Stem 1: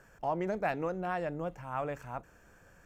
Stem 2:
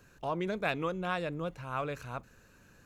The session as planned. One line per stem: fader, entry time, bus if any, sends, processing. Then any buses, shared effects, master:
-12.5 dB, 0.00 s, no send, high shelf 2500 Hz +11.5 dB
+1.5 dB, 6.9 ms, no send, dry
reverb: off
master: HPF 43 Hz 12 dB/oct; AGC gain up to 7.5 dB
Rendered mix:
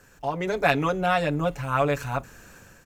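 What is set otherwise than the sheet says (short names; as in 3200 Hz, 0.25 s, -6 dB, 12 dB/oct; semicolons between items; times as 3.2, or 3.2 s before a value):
stem 1 -12.5 dB -> -1.0 dB; master: missing HPF 43 Hz 12 dB/oct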